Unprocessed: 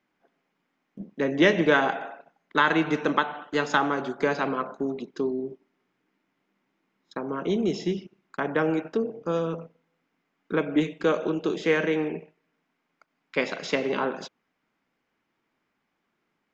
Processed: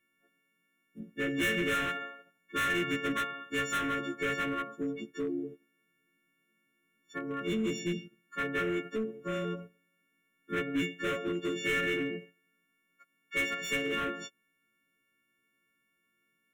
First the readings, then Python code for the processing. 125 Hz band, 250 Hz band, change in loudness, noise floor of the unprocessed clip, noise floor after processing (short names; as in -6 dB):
-6.5 dB, -7.5 dB, -6.5 dB, -78 dBFS, -77 dBFS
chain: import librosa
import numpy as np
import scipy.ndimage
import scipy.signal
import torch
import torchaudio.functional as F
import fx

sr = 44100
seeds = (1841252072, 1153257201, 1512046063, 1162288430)

y = fx.freq_snap(x, sr, grid_st=4)
y = np.clip(10.0 ** (22.0 / 20.0) * y, -1.0, 1.0) / 10.0 ** (22.0 / 20.0)
y = fx.fixed_phaser(y, sr, hz=2000.0, stages=4)
y = y * librosa.db_to_amplitude(-3.0)